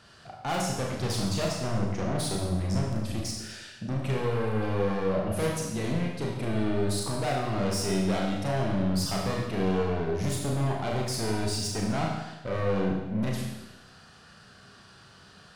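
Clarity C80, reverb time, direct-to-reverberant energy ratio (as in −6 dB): 4.5 dB, 1.0 s, −1.5 dB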